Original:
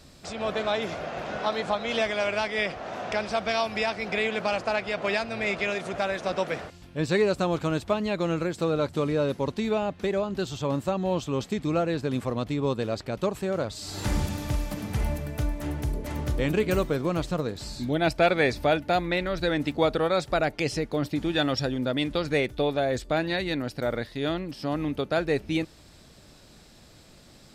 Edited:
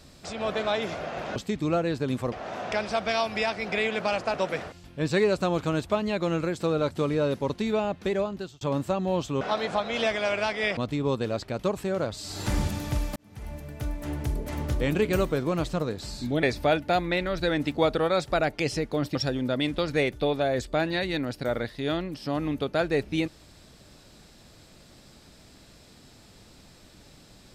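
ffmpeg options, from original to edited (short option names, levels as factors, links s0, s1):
-filter_complex "[0:a]asplit=10[s0][s1][s2][s3][s4][s5][s6][s7][s8][s9];[s0]atrim=end=1.362[s10];[s1]atrim=start=11.388:end=12.352[s11];[s2]atrim=start=2.718:end=4.742[s12];[s3]atrim=start=6.318:end=10.59,asetpts=PTS-STARTPTS,afade=t=out:st=3.872:d=0.4[s13];[s4]atrim=start=10.59:end=11.392,asetpts=PTS-STARTPTS,afade=t=in:d=0.004:c=hsin[s14];[s5]atrim=start=1.358:end=2.722[s15];[s6]atrim=start=12.348:end=14.74,asetpts=PTS-STARTPTS,afade=t=out:st=2.388:d=0.004:c=hsin[s16];[s7]atrim=start=14.74:end=18.012,asetpts=PTS-STARTPTS,afade=t=in:d=1.1[s17];[s8]atrim=start=18.428:end=21.152[s18];[s9]atrim=start=21.518[s19];[s10][s11]acrossfade=d=0.004:c1=hsin:c2=hsin[s20];[s20][s12]acrossfade=d=0.004:c1=hsin:c2=hsin[s21];[s13][s14]concat=n=2:v=0:a=1[s22];[s21][s22]acrossfade=d=0.004:c1=hsin:c2=hsin[s23];[s23][s15]acrossfade=d=0.004:c1=hsin:c2=hsin[s24];[s16][s17]concat=n=2:v=0:a=1[s25];[s24][s25]acrossfade=d=0.004:c1=hsin:c2=hsin[s26];[s26][s18]acrossfade=d=0.004:c1=hsin:c2=hsin[s27];[s27][s19]acrossfade=d=0.004:c1=hsin:c2=hsin"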